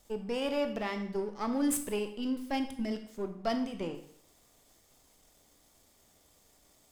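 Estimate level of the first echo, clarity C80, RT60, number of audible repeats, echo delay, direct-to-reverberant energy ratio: no echo, 12.5 dB, 0.65 s, no echo, no echo, 6.0 dB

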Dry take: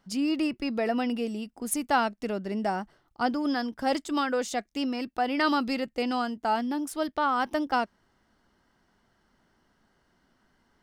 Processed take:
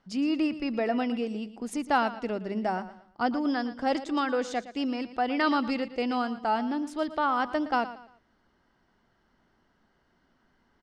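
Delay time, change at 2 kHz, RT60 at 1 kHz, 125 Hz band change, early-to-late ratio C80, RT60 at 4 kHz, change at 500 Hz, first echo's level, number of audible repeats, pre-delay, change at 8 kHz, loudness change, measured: 115 ms, -0.5 dB, no reverb, no reading, no reverb, no reverb, 0.0 dB, -14.5 dB, 3, no reverb, -10.0 dB, -0.5 dB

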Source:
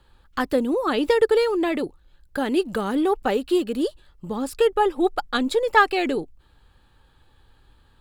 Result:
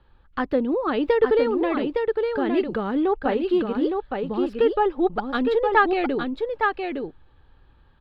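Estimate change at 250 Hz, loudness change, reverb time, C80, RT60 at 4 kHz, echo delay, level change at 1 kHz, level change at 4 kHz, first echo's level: +0.5 dB, -0.5 dB, no reverb, no reverb, no reverb, 862 ms, 0.0 dB, -6.0 dB, -4.5 dB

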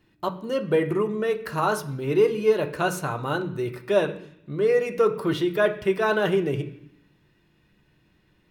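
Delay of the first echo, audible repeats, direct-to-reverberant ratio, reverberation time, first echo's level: no echo, no echo, 3.5 dB, 0.70 s, no echo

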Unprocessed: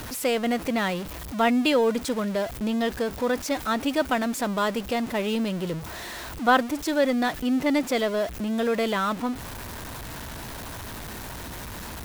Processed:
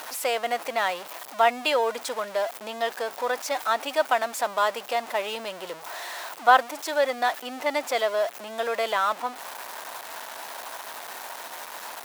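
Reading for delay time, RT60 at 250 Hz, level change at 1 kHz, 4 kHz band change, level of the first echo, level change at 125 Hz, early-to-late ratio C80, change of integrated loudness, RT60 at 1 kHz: no echo, no reverb, +3.5 dB, +0.5 dB, no echo, under -20 dB, no reverb, -1.5 dB, no reverb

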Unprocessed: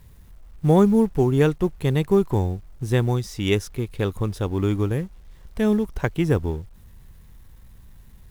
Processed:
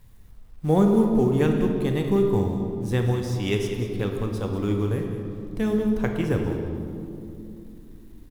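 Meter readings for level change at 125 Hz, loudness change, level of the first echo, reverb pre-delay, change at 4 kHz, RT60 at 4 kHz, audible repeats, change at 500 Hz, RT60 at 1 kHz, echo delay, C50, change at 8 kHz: -2.5 dB, -2.0 dB, -12.5 dB, 3 ms, -3.0 dB, 1.6 s, 1, -1.5 dB, 2.3 s, 195 ms, 4.0 dB, -3.5 dB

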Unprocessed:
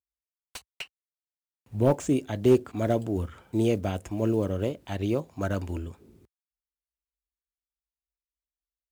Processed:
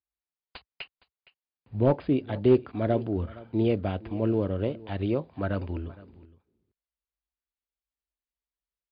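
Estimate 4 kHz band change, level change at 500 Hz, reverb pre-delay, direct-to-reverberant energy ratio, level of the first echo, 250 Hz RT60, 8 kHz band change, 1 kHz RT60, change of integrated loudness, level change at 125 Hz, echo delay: -2.5 dB, 0.0 dB, no reverb, no reverb, -20.0 dB, no reverb, under -35 dB, no reverb, 0.0 dB, 0.0 dB, 464 ms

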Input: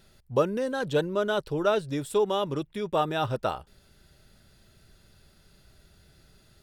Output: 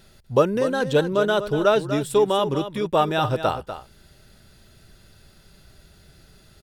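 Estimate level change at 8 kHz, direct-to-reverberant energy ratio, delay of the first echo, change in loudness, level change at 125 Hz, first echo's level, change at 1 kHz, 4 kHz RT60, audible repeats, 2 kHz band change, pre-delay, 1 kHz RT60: +6.5 dB, no reverb, 244 ms, +6.5 dB, +6.5 dB, -11.0 dB, +6.5 dB, no reverb, 1, +6.5 dB, no reverb, no reverb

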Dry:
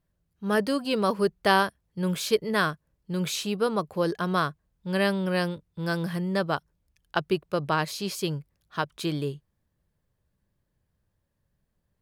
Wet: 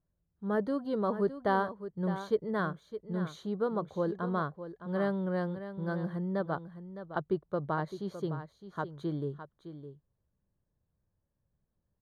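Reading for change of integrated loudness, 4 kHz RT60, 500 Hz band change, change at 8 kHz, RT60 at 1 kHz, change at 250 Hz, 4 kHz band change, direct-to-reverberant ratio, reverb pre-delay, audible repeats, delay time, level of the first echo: -6.5 dB, no reverb, -5.0 dB, under -20 dB, no reverb, -5.0 dB, -20.5 dB, no reverb, no reverb, 1, 611 ms, -11.5 dB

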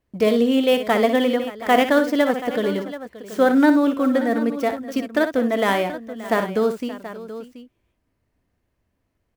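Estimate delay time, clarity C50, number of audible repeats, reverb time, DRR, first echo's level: 60 ms, no reverb, 3, no reverb, no reverb, -9.5 dB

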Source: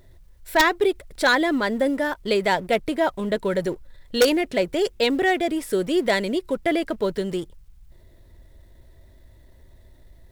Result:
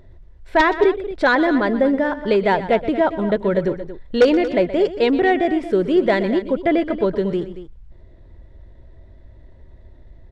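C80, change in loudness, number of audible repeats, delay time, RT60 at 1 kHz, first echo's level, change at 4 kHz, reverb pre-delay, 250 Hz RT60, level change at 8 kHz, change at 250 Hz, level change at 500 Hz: no reverb, +4.0 dB, 2, 123 ms, no reverb, -14.5 dB, -4.0 dB, no reverb, no reverb, under -10 dB, +5.5 dB, +5.0 dB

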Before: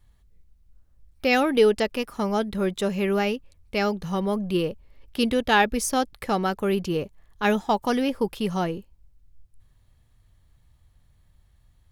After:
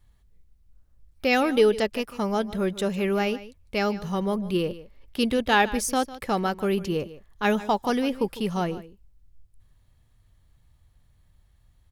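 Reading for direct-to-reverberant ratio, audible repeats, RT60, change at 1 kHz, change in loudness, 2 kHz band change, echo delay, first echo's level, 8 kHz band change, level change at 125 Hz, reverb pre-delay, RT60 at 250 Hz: no reverb, 1, no reverb, -1.0 dB, -1.0 dB, -1.0 dB, 151 ms, -16.5 dB, -1.0 dB, -1.0 dB, no reverb, no reverb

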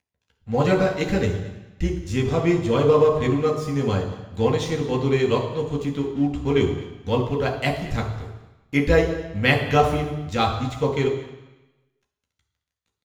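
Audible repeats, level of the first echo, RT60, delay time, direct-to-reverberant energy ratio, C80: 1, -18.5 dB, 1.0 s, 217 ms, 1.0 dB, 9.5 dB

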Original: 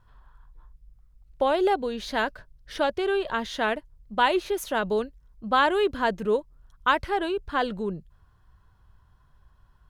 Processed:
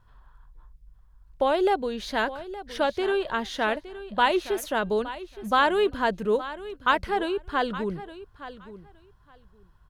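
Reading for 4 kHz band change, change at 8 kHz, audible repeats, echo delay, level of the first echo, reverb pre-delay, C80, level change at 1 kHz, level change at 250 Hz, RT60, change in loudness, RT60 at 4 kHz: 0.0 dB, 0.0 dB, 2, 867 ms, -14.5 dB, no reverb, no reverb, 0.0 dB, 0.0 dB, no reverb, 0.0 dB, no reverb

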